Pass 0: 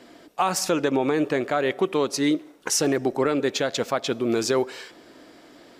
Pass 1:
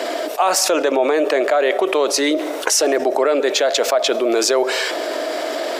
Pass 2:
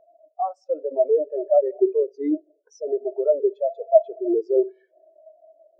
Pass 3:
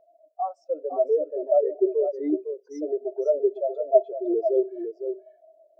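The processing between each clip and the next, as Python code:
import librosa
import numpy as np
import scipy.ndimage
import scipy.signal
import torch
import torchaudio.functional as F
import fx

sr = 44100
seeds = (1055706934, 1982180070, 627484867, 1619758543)

y1 = scipy.signal.sosfilt(scipy.signal.butter(4, 360.0, 'highpass', fs=sr, output='sos'), x)
y1 = fx.peak_eq(y1, sr, hz=630.0, db=12.0, octaves=0.24)
y1 = fx.env_flatten(y1, sr, amount_pct=70)
y1 = y1 * 10.0 ** (1.0 / 20.0)
y2 = fx.echo_bbd(y1, sr, ms=63, stages=2048, feedback_pct=80, wet_db=-16)
y2 = fx.spectral_expand(y2, sr, expansion=4.0)
y2 = y2 * 10.0 ** (-2.5 / 20.0)
y3 = y2 + 10.0 ** (-8.0 / 20.0) * np.pad(y2, (int(507 * sr / 1000.0), 0))[:len(y2)]
y3 = y3 * 10.0 ** (-3.0 / 20.0)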